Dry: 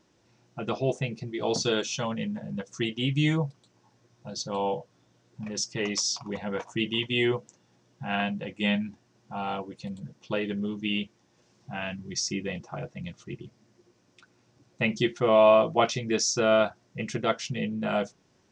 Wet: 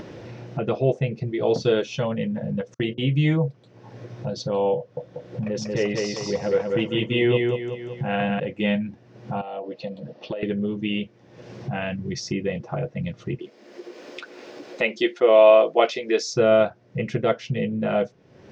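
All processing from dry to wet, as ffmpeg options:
ffmpeg -i in.wav -filter_complex "[0:a]asettb=1/sr,asplit=3[link_01][link_02][link_03];[link_01]atrim=end=2.744[link_04];[link_02]atrim=start=2.74:end=3.48,asetpts=PTS-STARTPTS,afade=type=in:duration=0.004:curve=qsin,afade=type=out:start_time=0.736:duration=0.004:curve=qsin,agate=range=-40dB:threshold=-39dB:ratio=16:release=100:detection=peak,bandreject=frequency=60:width_type=h:width=6,bandreject=frequency=120:width_type=h:width=6,bandreject=frequency=180:width_type=h:width=6,bandreject=frequency=240:width_type=h:width=6,bandreject=frequency=300:width_type=h:width=6,bandreject=frequency=360:width_type=h:width=6,bandreject=frequency=420:width_type=h:width=6,bandreject=frequency=480:width_type=h:width=6,bandreject=frequency=540:width_type=h:width=6,bandreject=frequency=600:width_type=h:width=6[link_05];[link_03]atrim=start=3.476[link_06];[link_04][link_05]acrossfade=duration=0.004:curve1=hsin:curve2=qsin[link_07];[link_07][link_06]acrossfade=duration=0.004:curve1=qsin:curve2=hsin,asettb=1/sr,asplit=3[link_08][link_09][link_10];[link_08]atrim=end=4.784[link_11];[link_09]atrim=start=4.78:end=8.4,asetpts=PTS-STARTPTS,afade=type=in:duration=0.004:curve=qsin,afade=type=out:start_time=3.616:duration=0.004:curve=qsin,equalizer=frequency=520:width=6.8:gain=4.5,aecho=1:1:189|378|567|756:0.668|0.221|0.0728|0.024,atrim=end_sample=159642[link_12];[link_10]atrim=start=8.396[link_13];[link_11][link_12]acrossfade=duration=0.004:curve1=hsin:curve2=qsin[link_14];[link_14][link_13]acrossfade=duration=0.004:curve1=qsin:curve2=hsin,asettb=1/sr,asplit=3[link_15][link_16][link_17];[link_15]atrim=end=9.414[link_18];[link_16]atrim=start=9.41:end=10.43,asetpts=PTS-STARTPTS,afade=type=in:duration=0.004:curve=qsin,afade=type=out:start_time=1.016:duration=0.004:curve=qsin,highpass=400,equalizer=frequency=410:width_type=q:width=4:gain=-7,equalizer=frequency=640:width_type=q:width=4:gain=5,equalizer=frequency=1000:width_type=q:width=4:gain=-5,equalizer=frequency=1500:width_type=q:width=4:gain=-9,equalizer=frequency=2200:width_type=q:width=4:gain=-8,equalizer=frequency=3400:width_type=q:width=4:gain=-4,lowpass=frequency=4800:width=0.5412,lowpass=frequency=4800:width=1.3066,acompressor=threshold=-39dB:ratio=10:attack=3.2:release=140:knee=1:detection=peak[link_19];[link_17]atrim=start=10.426[link_20];[link_18][link_19]acrossfade=duration=0.004:curve1=hsin:curve2=qsin[link_21];[link_21][link_20]acrossfade=duration=0.004:curve1=qsin:curve2=hsin,asettb=1/sr,asplit=3[link_22][link_23][link_24];[link_22]atrim=end=13.394[link_25];[link_23]atrim=start=13.39:end=16.34,asetpts=PTS-STARTPTS,afade=type=in:duration=0.004:curve=qsin,afade=type=out:start_time=2.946:duration=0.004:curve=qsin,highpass=frequency=290:width=0.5412,highpass=frequency=290:width=1.3066,highshelf=frequency=2700:gain=8,bandreject=frequency=5800:width=15[link_26];[link_24]atrim=start=16.336[link_27];[link_25][link_26]acrossfade=duration=0.004:curve1=hsin:curve2=qsin[link_28];[link_28][link_27]acrossfade=duration=0.004:curve1=qsin:curve2=hsin,equalizer=frequency=125:width_type=o:width=1:gain=7,equalizer=frequency=500:width_type=o:width=1:gain=9,equalizer=frequency=1000:width_type=o:width=1:gain=-3,equalizer=frequency=2000:width_type=o:width=1:gain=3,equalizer=frequency=8000:width_type=o:width=1:gain=-10,acompressor=mode=upward:threshold=-21dB:ratio=2.5,highshelf=frequency=6900:gain=-11" out.wav

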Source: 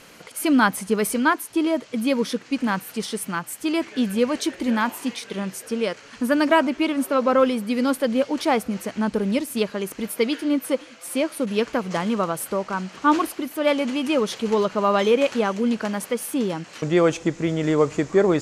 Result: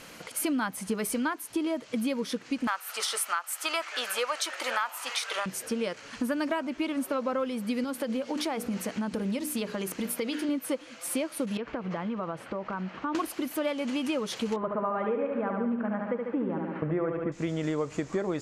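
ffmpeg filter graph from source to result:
ffmpeg -i in.wav -filter_complex "[0:a]asettb=1/sr,asplit=3[link_01][link_02][link_03];[link_01]atrim=end=2.674[link_04];[link_02]atrim=start=2.67:end=5.46,asetpts=PTS-STARTPTS,afade=type=in:duration=0.004:curve=qsin,afade=type=out:start_time=2.786:duration=0.004:curve=qsin,highpass=frequency=620:width=0.5412,highpass=frequency=620:width=1.3066,equalizer=frequency=1300:width_type=o:width=0.25:gain=9.5,acontrast=57[link_05];[link_03]atrim=start=5.456[link_06];[link_04][link_05]acrossfade=duration=0.004:curve1=hsin:curve2=qsin[link_07];[link_07][link_06]acrossfade=duration=0.004:curve1=qsin:curve2=hsin,asettb=1/sr,asplit=3[link_08][link_09][link_10];[link_08]atrim=end=7.844[link_11];[link_09]atrim=start=7.84:end=10.49,asetpts=PTS-STARTPTS,afade=type=in:duration=0.004:curve=qsin,afade=type=out:start_time=2.646:duration=0.004:curve=qsin,highpass=60,bandreject=frequency=60:width_type=h:width=6,bandreject=frequency=120:width_type=h:width=6,bandreject=frequency=180:width_type=h:width=6,bandreject=frequency=240:width_type=h:width=6,bandreject=frequency=300:width_type=h:width=6,bandreject=frequency=360:width_type=h:width=6,bandreject=frequency=420:width_type=h:width=6,bandreject=frequency=480:width_type=h:width=6,acompressor=threshold=-25dB:ratio=3:attack=3.2:release=140:knee=1:detection=peak[link_12];[link_10]atrim=start=10.486[link_13];[link_11][link_12]acrossfade=duration=0.004:curve1=hsin:curve2=qsin[link_14];[link_14][link_13]acrossfade=duration=0.004:curve1=qsin:curve2=hsin,asettb=1/sr,asplit=3[link_15][link_16][link_17];[link_15]atrim=end=11.574[link_18];[link_16]atrim=start=11.57:end=13.15,asetpts=PTS-STARTPTS,afade=type=in:duration=0.004:curve=qsin,afade=type=out:start_time=1.576:duration=0.004:curve=qsin,lowpass=2400,acompressor=threshold=-29dB:ratio=4:attack=3.2:release=140:knee=1:detection=peak[link_19];[link_17]atrim=start=13.146[link_20];[link_18][link_19]acrossfade=duration=0.004:curve1=hsin:curve2=qsin[link_21];[link_21][link_20]acrossfade=duration=0.004:curve1=qsin:curve2=hsin,asettb=1/sr,asplit=3[link_22][link_23][link_24];[link_22]atrim=end=14.564[link_25];[link_23]atrim=start=14.56:end=17.32,asetpts=PTS-STARTPTS,afade=type=in:duration=0.004:curve=qsin,afade=type=out:start_time=2.756:duration=0.004:curve=qsin,lowpass=frequency=1800:width=0.5412,lowpass=frequency=1800:width=1.3066,aecho=1:1:72|144|216|288|360|432|504|576:0.562|0.332|0.196|0.115|0.0681|0.0402|0.0237|0.014,atrim=end_sample=121716[link_26];[link_24]atrim=start=17.316[link_27];[link_25][link_26]acrossfade=duration=0.004:curve1=hsin:curve2=qsin[link_28];[link_28][link_27]acrossfade=duration=0.004:curve1=qsin:curve2=hsin,bandreject=frequency=410:width=12,acompressor=threshold=-27dB:ratio=6" out.wav

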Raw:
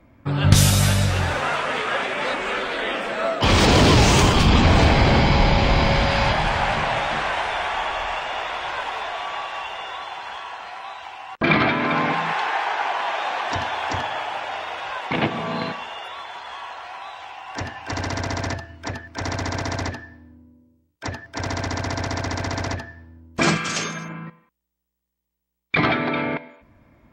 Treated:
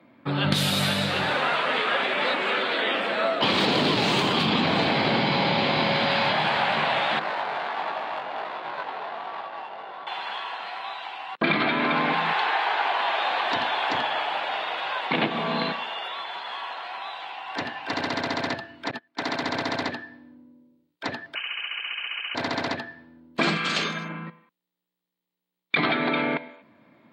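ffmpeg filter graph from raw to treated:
ffmpeg -i in.wav -filter_complex "[0:a]asettb=1/sr,asplit=3[link_01][link_02][link_03];[link_01]atrim=end=7.194[link_04];[link_02]atrim=start=7.19:end=10.07,asetpts=PTS-STARTPTS,afade=type=in:duration=0.004:curve=qsin,afade=type=out:start_time=2.876:duration=0.004:curve=qsin,adynamicsmooth=sensitivity=1:basefreq=750,flanger=delay=18.5:depth=2.4:speed=1.4[link_05];[link_03]atrim=start=10.066[link_06];[link_04][link_05]acrossfade=duration=0.004:curve1=hsin:curve2=qsin[link_07];[link_07][link_06]acrossfade=duration=0.004:curve1=qsin:curve2=hsin,asettb=1/sr,asplit=3[link_08][link_09][link_10];[link_08]atrim=end=18.914[link_11];[link_09]atrim=start=18.91:end=19.43,asetpts=PTS-STARTPTS,afade=type=in:duration=0.004:curve=qsin,afade=type=out:start_time=0.516:duration=0.004:curve=qsin,bandreject=frequency=510:width=12,agate=range=-25dB:threshold=-33dB:ratio=16:release=100:detection=peak,highpass=150[link_12];[link_10]atrim=start=19.426[link_13];[link_11][link_12]acrossfade=duration=0.004:curve1=hsin:curve2=qsin[link_14];[link_14][link_13]acrossfade=duration=0.004:curve1=qsin:curve2=hsin,asettb=1/sr,asplit=3[link_15][link_16][link_17];[link_15]atrim=end=21.354[link_18];[link_16]atrim=start=21.35:end=22.35,asetpts=PTS-STARTPTS,afade=type=in:duration=0.004:curve=qsin,afade=type=out:start_time=0.996:duration=0.004:curve=qsin,lowshelf=frequency=120:width_type=q:width=1.5:gain=-13,acrossover=split=590|1500[link_19][link_20][link_21];[link_19]acompressor=threshold=-37dB:ratio=4[link_22];[link_20]acompressor=threshold=-35dB:ratio=4[link_23];[link_21]acompressor=threshold=-43dB:ratio=4[link_24];[link_22][link_23][link_24]amix=inputs=3:normalize=0,lowpass=frequency=2700:width_type=q:width=0.5098,lowpass=frequency=2700:width_type=q:width=0.6013,lowpass=frequency=2700:width_type=q:width=0.9,lowpass=frequency=2700:width_type=q:width=2.563,afreqshift=-3200[link_25];[link_17]atrim=start=22.346[link_26];[link_18][link_25]acrossfade=duration=0.004:curve1=hsin:curve2=qsin[link_27];[link_27][link_26]acrossfade=duration=0.004:curve1=qsin:curve2=hsin,highpass=frequency=160:width=0.5412,highpass=frequency=160:width=1.3066,highshelf=frequency=4900:width_type=q:width=3:gain=-6,acompressor=threshold=-19dB:ratio=6" out.wav

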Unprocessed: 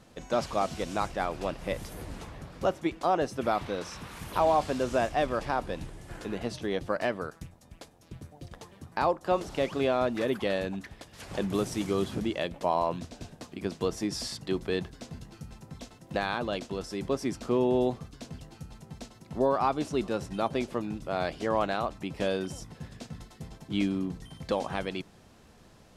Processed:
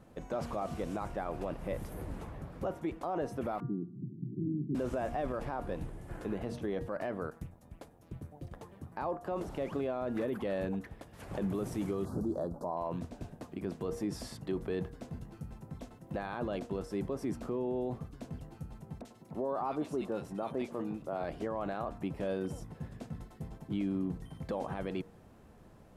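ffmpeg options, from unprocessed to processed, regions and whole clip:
ffmpeg -i in.wav -filter_complex "[0:a]asettb=1/sr,asplit=3[link_01][link_02][link_03];[link_01]atrim=end=3.604[link_04];[link_02]atrim=start=3.6:end=4.75,asetpts=PTS-STARTPTS,afade=type=in:duration=0.004:curve=qsin,afade=type=out:start_time=1.146:duration=0.004:curve=qsin,asuperpass=centerf=210:order=20:qfactor=0.79,lowshelf=frequency=190:gain=10.5[link_05];[link_03]atrim=start=4.746[link_06];[link_04][link_05]acrossfade=duration=0.004:curve1=hsin:curve2=qsin[link_07];[link_07][link_06]acrossfade=duration=0.004:curve1=qsin:curve2=hsin,asettb=1/sr,asplit=3[link_08][link_09][link_10];[link_08]atrim=end=12.054[link_11];[link_09]atrim=start=12.05:end=12.77,asetpts=PTS-STARTPTS,afade=type=in:duration=0.004:curve=qsin,afade=type=out:start_time=0.716:duration=0.004:curve=qsin,asuperstop=centerf=2500:order=8:qfactor=0.87,asplit=2[link_12][link_13];[link_13]adelay=12,volume=-13.5dB[link_14];[link_12][link_14]amix=inputs=2:normalize=0,atrim=end_sample=31752[link_15];[link_10]atrim=start=12.766[link_16];[link_11][link_15]acrossfade=duration=0.004:curve1=hsin:curve2=qsin[link_17];[link_17][link_16]acrossfade=duration=0.004:curve1=qsin:curve2=hsin,asettb=1/sr,asplit=3[link_18][link_19][link_20];[link_18]atrim=end=19.014[link_21];[link_19]atrim=start=19.01:end=21.24,asetpts=PTS-STARTPTS,afade=type=in:duration=0.004:curve=qsin,afade=type=out:start_time=2.226:duration=0.004:curve=qsin,highpass=frequency=230:poles=1,acrossover=split=1700[link_22][link_23];[link_23]adelay=40[link_24];[link_22][link_24]amix=inputs=2:normalize=0,atrim=end_sample=98343[link_25];[link_20]atrim=start=21.236[link_26];[link_21][link_25]acrossfade=duration=0.004:curve1=hsin:curve2=qsin[link_27];[link_27][link_26]acrossfade=duration=0.004:curve1=qsin:curve2=hsin,equalizer=frequency=4900:width_type=o:width=2.4:gain=-13.5,bandreject=frequency=235.8:width_type=h:width=4,bandreject=frequency=471.6:width_type=h:width=4,bandreject=frequency=707.4:width_type=h:width=4,bandreject=frequency=943.2:width_type=h:width=4,bandreject=frequency=1179:width_type=h:width=4,bandreject=frequency=1414.8:width_type=h:width=4,bandreject=frequency=1650.6:width_type=h:width=4,bandreject=frequency=1886.4:width_type=h:width=4,alimiter=level_in=2dB:limit=-24dB:level=0:latency=1:release=24,volume=-2dB" out.wav

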